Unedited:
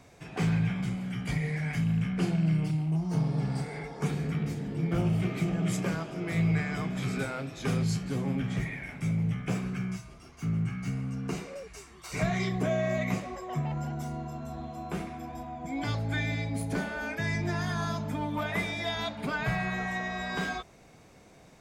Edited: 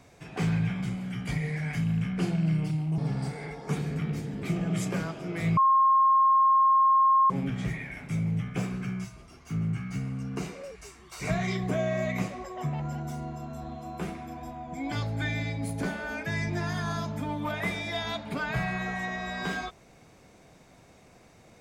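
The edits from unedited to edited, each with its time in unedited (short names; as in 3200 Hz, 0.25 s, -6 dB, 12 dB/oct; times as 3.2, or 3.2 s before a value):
2.98–3.31 cut
4.76–5.35 cut
6.49–8.22 bleep 1070 Hz -17.5 dBFS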